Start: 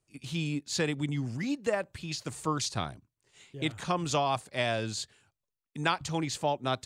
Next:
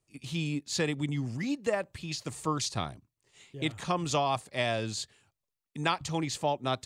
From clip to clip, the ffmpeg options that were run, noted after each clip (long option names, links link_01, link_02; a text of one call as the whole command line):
ffmpeg -i in.wav -af "bandreject=frequency=1500:width=12" out.wav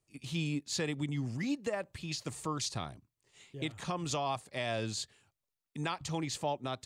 ffmpeg -i in.wav -af "alimiter=limit=-21.5dB:level=0:latency=1:release=222,volume=-2dB" out.wav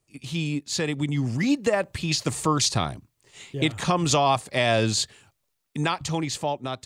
ffmpeg -i in.wav -af "dynaudnorm=framelen=240:gausssize=11:maxgain=7dB,volume=6.5dB" out.wav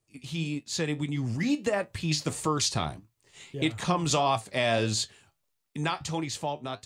ffmpeg -i in.wav -af "flanger=delay=8.8:depth=4.6:regen=65:speed=1.6:shape=sinusoidal" out.wav